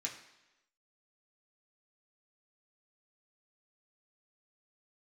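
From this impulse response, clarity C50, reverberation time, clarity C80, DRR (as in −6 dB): 8.5 dB, 1.0 s, 11.0 dB, −2.0 dB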